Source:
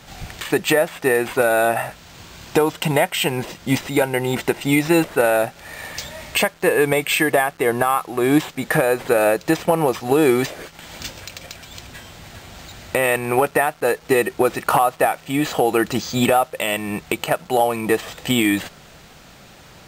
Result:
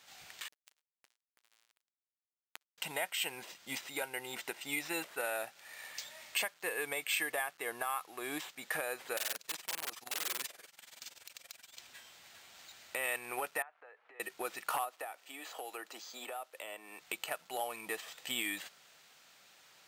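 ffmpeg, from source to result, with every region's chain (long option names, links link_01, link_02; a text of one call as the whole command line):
ffmpeg -i in.wav -filter_complex "[0:a]asettb=1/sr,asplit=3[link_01][link_02][link_03];[link_01]atrim=end=0.484[link_04];[link_02]atrim=start=0.48:end=2.78,asetpts=PTS-STARTPTS,afade=type=in:duration=0.004:curve=qsin,afade=type=out:start_time=2.296:duration=0.004:curve=qsin,acompressor=threshold=-25dB:ratio=10:attack=3.2:release=140:knee=1:detection=peak,acrusher=bits=2:mix=0:aa=0.5[link_05];[link_03]atrim=start=2.776[link_06];[link_04][link_05]acrossfade=duration=0.004:curve1=hsin:curve2=qsin[link_07];[link_07][link_06]acrossfade=duration=0.004:curve1=qsin:curve2=hsin,asettb=1/sr,asplit=3[link_08][link_09][link_10];[link_08]atrim=end=9.174[link_11];[link_09]atrim=start=9.17:end=11.77,asetpts=PTS-STARTPTS,afade=type=in:duration=0.004:curve=qsin,afade=type=out:start_time=2.596:duration=0.004:curve=qsin,tremolo=f=21:d=0.889,aeval=exprs='(mod(7.94*val(0)+1,2)-1)/7.94':channel_layout=same,equalizer=frequency=11000:width_type=o:width=1:gain=6.5[link_12];[link_10]atrim=start=11.766[link_13];[link_11][link_12]acrossfade=duration=0.004:curve1=hsin:curve2=qsin[link_14];[link_14][link_13]acrossfade=duration=0.004:curve1=qsin:curve2=hsin,asettb=1/sr,asplit=3[link_15][link_16][link_17];[link_15]atrim=end=13.624[link_18];[link_16]atrim=start=13.62:end=14.2,asetpts=PTS-STARTPTS,afade=type=in:duration=0.004:curve=qsin,afade=type=out:start_time=0.576:duration=0.004:curve=qsin,lowpass=4300,acompressor=threshold=-27dB:ratio=16:attack=3.2:release=140:knee=1:detection=peak,acrossover=split=440 2200:gain=0.1 1 0.0631[link_19][link_20][link_21];[link_19][link_20][link_21]amix=inputs=3:normalize=0[link_22];[link_17]atrim=start=14.196[link_23];[link_18][link_22]acrossfade=duration=0.004:curve1=hsin:curve2=qsin[link_24];[link_24][link_23]acrossfade=duration=0.004:curve1=qsin:curve2=hsin,asettb=1/sr,asplit=3[link_25][link_26][link_27];[link_25]atrim=end=14.844[link_28];[link_26]atrim=start=14.84:end=17.01,asetpts=PTS-STARTPTS,afade=type=in:duration=0.004:curve=qsin,afade=type=out:start_time=2.166:duration=0.004:curve=qsin,highpass=frequency=250:width=0.5412,highpass=frequency=250:width=1.3066,acrossover=split=450|1200[link_29][link_30][link_31];[link_29]acompressor=threshold=-31dB:ratio=4[link_32];[link_30]acompressor=threshold=-23dB:ratio=4[link_33];[link_31]acompressor=threshold=-34dB:ratio=4[link_34];[link_32][link_33][link_34]amix=inputs=3:normalize=0[link_35];[link_27]atrim=start=17.006[link_36];[link_28][link_35]acrossfade=duration=0.004:curve1=hsin:curve2=qsin[link_37];[link_37][link_36]acrossfade=duration=0.004:curve1=qsin:curve2=hsin,lowpass=frequency=1700:poles=1,aderivative" out.wav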